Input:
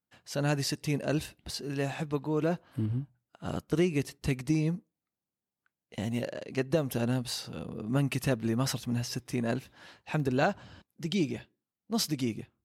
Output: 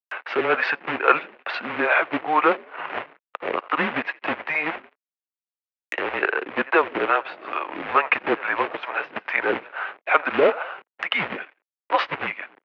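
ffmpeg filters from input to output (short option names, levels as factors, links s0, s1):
-filter_complex "[0:a]asplit=4[s0][s1][s2][s3];[s1]adelay=85,afreqshift=37,volume=0.0668[s4];[s2]adelay=170,afreqshift=74,volume=0.0347[s5];[s3]adelay=255,afreqshift=111,volume=0.018[s6];[s0][s4][s5][s6]amix=inputs=4:normalize=0,apsyclip=8.41,equalizer=f=1300:t=o:w=1.7:g=9.5,acrossover=split=610[s7][s8];[s7]aeval=exprs='val(0)*(1-1/2+1/2*cos(2*PI*2.3*n/s))':c=same[s9];[s8]aeval=exprs='val(0)*(1-1/2-1/2*cos(2*PI*2.3*n/s))':c=same[s10];[s9][s10]amix=inputs=2:normalize=0,aresample=16000,volume=1.88,asoftclip=hard,volume=0.531,aresample=44100,acrusher=bits=2:mode=log:mix=0:aa=0.000001,aeval=exprs='sgn(val(0))*max(abs(val(0))-0.00447,0)':c=same,highpass=f=520:t=q:w=0.5412,highpass=f=520:t=q:w=1.307,lowpass=f=2700:t=q:w=0.5176,lowpass=f=2700:t=q:w=0.7071,lowpass=f=2700:t=q:w=1.932,afreqshift=-160,acompressor=mode=upward:threshold=0.0708:ratio=2.5,aemphasis=mode=production:type=bsi,volume=0.891"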